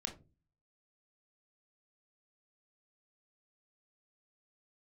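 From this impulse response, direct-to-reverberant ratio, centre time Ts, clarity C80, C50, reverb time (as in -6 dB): 3.0 dB, 13 ms, 18.5 dB, 12.0 dB, 0.30 s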